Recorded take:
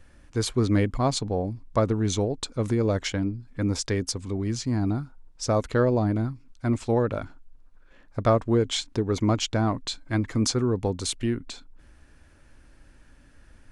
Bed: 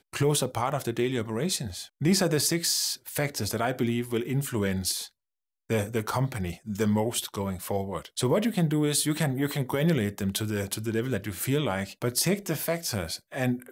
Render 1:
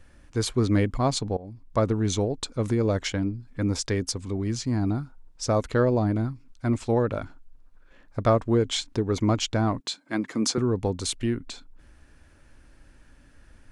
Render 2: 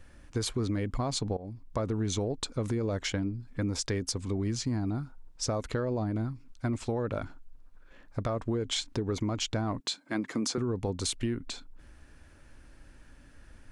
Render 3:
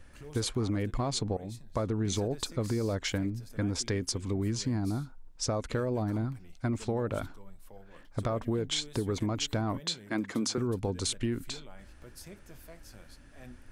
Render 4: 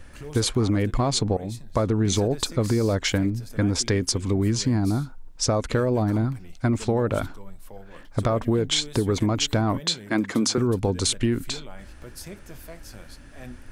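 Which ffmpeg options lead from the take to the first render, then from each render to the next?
ffmpeg -i in.wav -filter_complex "[0:a]asettb=1/sr,asplit=3[link_01][link_02][link_03];[link_01]atrim=end=9.804[link_04];[link_02]atrim=start=9.8:end=10.58,asetpts=PTS-STARTPTS,afade=type=in:duration=0.004:curve=qsin,afade=type=out:start_time=0.776:duration=0.004:curve=qsin,highpass=frequency=180:width=0.5412,highpass=frequency=180:width=1.3066[link_05];[link_03]atrim=start=10.576[link_06];[link_04][link_05]acrossfade=duration=0.004:curve1=hsin:curve2=qsin[link_07];[link_07][link_06]acrossfade=duration=0.004:curve1=qsin:curve2=hsin,asplit=2[link_08][link_09];[link_08]atrim=end=1.37,asetpts=PTS-STARTPTS,afade=type=out:start_time=1.366:duration=0.004:curve=hsin:silence=0.1[link_10];[link_09]atrim=start=1.37,asetpts=PTS-STARTPTS,afade=type=in:duration=0.46:silence=0.1[link_11];[link_10][link_11]concat=n=2:v=0:a=1" out.wav
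ffmpeg -i in.wav -af "alimiter=limit=-18dB:level=0:latency=1:release=31,acompressor=threshold=-27dB:ratio=6" out.wav
ffmpeg -i in.wav -i bed.wav -filter_complex "[1:a]volume=-23.5dB[link_01];[0:a][link_01]amix=inputs=2:normalize=0" out.wav
ffmpeg -i in.wav -af "volume=8.5dB" out.wav

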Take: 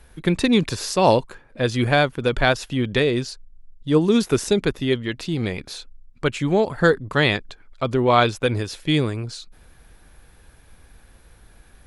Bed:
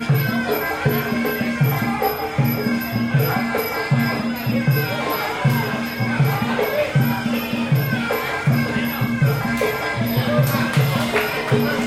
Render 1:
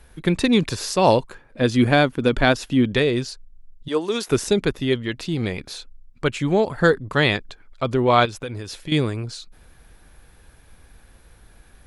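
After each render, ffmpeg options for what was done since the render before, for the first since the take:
ffmpeg -i in.wav -filter_complex "[0:a]asettb=1/sr,asplit=3[link_01][link_02][link_03];[link_01]atrim=end=1.614[link_04];[link_02]atrim=start=1.61:end=2.92,asetpts=PTS-STARTPTS,afade=type=in:duration=0.004:curve=qsin,afade=type=out:start_time=1.306:duration=0.004:curve=qsin,equalizer=frequency=260:width_type=o:width=0.77:gain=7[link_05];[link_03]atrim=start=2.916[link_06];[link_04][link_05]acrossfade=duration=0.004:curve1=hsin:curve2=qsin[link_07];[link_07][link_06]acrossfade=duration=0.004:curve1=qsin:curve2=hsin,asettb=1/sr,asplit=3[link_08][link_09][link_10];[link_08]atrim=end=3.884[link_11];[link_09]atrim=start=3.88:end=4.28,asetpts=PTS-STARTPTS,afade=type=in:duration=0.004:curve=qsin,afade=type=out:start_time=0.396:duration=0.004:curve=qsin,highpass=470[link_12];[link_10]atrim=start=4.276[link_13];[link_11][link_12]acrossfade=duration=0.004:curve1=hsin:curve2=qsin[link_14];[link_14][link_13]acrossfade=duration=0.004:curve1=qsin:curve2=hsin,asettb=1/sr,asplit=3[link_15][link_16][link_17];[link_15]atrim=end=8.254[link_18];[link_16]atrim=start=8.25:end=8.92,asetpts=PTS-STARTPTS,afade=type=in:duration=0.004:curve=qsin,afade=type=out:start_time=0.666:duration=0.004:curve=qsin,acompressor=threshold=-29dB:ratio=3:attack=3.2:release=140:knee=1:detection=peak[link_19];[link_17]atrim=start=8.916[link_20];[link_18][link_19]acrossfade=duration=0.004:curve1=hsin:curve2=qsin[link_21];[link_21][link_20]acrossfade=duration=0.004:curve1=qsin:curve2=hsin" out.wav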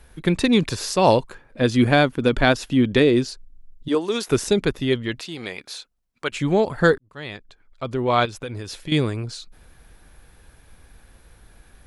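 ffmpeg -i in.wav -filter_complex "[0:a]asettb=1/sr,asplit=3[link_01][link_02][link_03];[link_01]atrim=end=2.954[link_04];[link_02]atrim=start=2.95:end=3.95,asetpts=PTS-STARTPTS,afade=type=in:duration=0.004:curve=qsin,afade=type=out:start_time=0.996:duration=0.004:curve=qsin,equalizer=frequency=300:width=1.8:gain=8[link_05];[link_03]atrim=start=3.946[link_06];[link_04][link_05]acrossfade=duration=0.004:curve1=hsin:curve2=qsin[link_07];[link_07][link_06]acrossfade=duration=0.004:curve1=qsin:curve2=hsin,asettb=1/sr,asplit=3[link_08][link_09][link_10];[link_08]atrim=end=5.194[link_11];[link_09]atrim=start=5.19:end=6.32,asetpts=PTS-STARTPTS,afade=type=in:duration=0.004:curve=qsin,afade=type=out:start_time=1.126:duration=0.004:curve=qsin,highpass=frequency=770:poles=1[link_12];[link_10]atrim=start=6.316[link_13];[link_11][link_12]acrossfade=duration=0.004:curve1=hsin:curve2=qsin[link_14];[link_14][link_13]acrossfade=duration=0.004:curve1=qsin:curve2=hsin,asplit=2[link_15][link_16];[link_15]atrim=end=6.98,asetpts=PTS-STARTPTS,afade=type=out:start_time=6.976:duration=0.004:curve=hsin[link_17];[link_16]atrim=start=6.98,asetpts=PTS-STARTPTS,afade=type=in:duration=1.66[link_18];[link_17][link_18]concat=n=2:v=0:a=1" out.wav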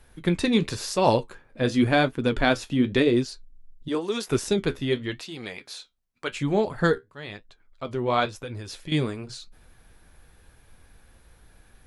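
ffmpeg -i in.wav -af "flanger=delay=7.8:depth=6.4:regen=-56:speed=0.93:shape=triangular" out.wav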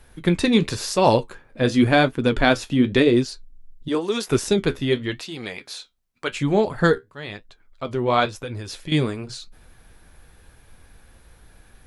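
ffmpeg -i in.wav -af "volume=4dB,alimiter=limit=-3dB:level=0:latency=1" out.wav

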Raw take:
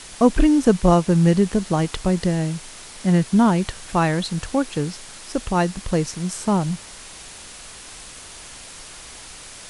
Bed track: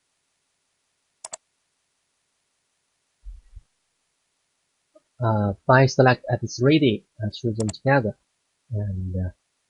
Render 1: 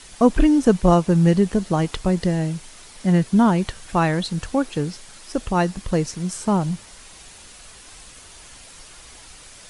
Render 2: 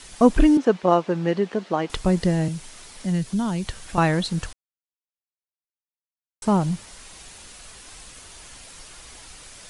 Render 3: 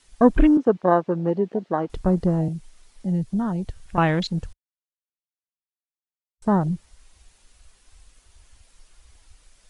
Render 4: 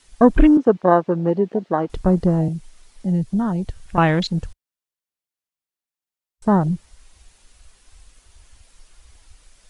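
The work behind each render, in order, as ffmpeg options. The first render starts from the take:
ffmpeg -i in.wav -af "afftdn=noise_reduction=6:noise_floor=-40" out.wav
ffmpeg -i in.wav -filter_complex "[0:a]asettb=1/sr,asplit=3[link_01][link_02][link_03];[link_01]atrim=end=0.574[link_04];[link_02]atrim=start=0.57:end=1.9,asetpts=PTS-STARTPTS,afade=type=in:duration=0.004:curve=qsin,afade=type=out:start_time=1.326:duration=0.004:curve=qsin,highpass=330,lowpass=3600[link_05];[link_03]atrim=start=1.896[link_06];[link_04][link_05]acrossfade=duration=0.004:curve1=hsin:curve2=qsin[link_07];[link_07][link_06]acrossfade=duration=0.004:curve1=qsin:curve2=hsin,asettb=1/sr,asplit=3[link_08][link_09][link_10];[link_08]atrim=end=2.484[link_11];[link_09]atrim=start=2.48:end=3.98,asetpts=PTS-STARTPTS,afade=type=in:duration=0.004:curve=qsin,afade=type=out:start_time=1.496:duration=0.004:curve=qsin,acrossover=split=140|3000[link_12][link_13][link_14];[link_13]acompressor=threshold=-34dB:ratio=2:attack=3.2:release=140:knee=2.83:detection=peak[link_15];[link_12][link_15][link_14]amix=inputs=3:normalize=0[link_16];[link_10]atrim=start=3.976[link_17];[link_11][link_16]acrossfade=duration=0.004:curve1=hsin:curve2=qsin[link_18];[link_18][link_17]acrossfade=duration=0.004:curve1=qsin:curve2=hsin,asplit=3[link_19][link_20][link_21];[link_19]atrim=end=4.53,asetpts=PTS-STARTPTS,afade=type=out:start_time=4.526:duration=0.004:curve=hsin[link_22];[link_20]atrim=start=4.53:end=6.42,asetpts=PTS-STARTPTS,volume=0[link_23];[link_21]atrim=start=6.42,asetpts=PTS-STARTPTS,afade=type=in:duration=0.004:curve=hsin[link_24];[link_22][link_23][link_24]concat=n=3:v=0:a=1" out.wav
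ffmpeg -i in.wav -af "afwtdn=0.0282" out.wav
ffmpeg -i in.wav -af "volume=3.5dB,alimiter=limit=-1dB:level=0:latency=1" out.wav

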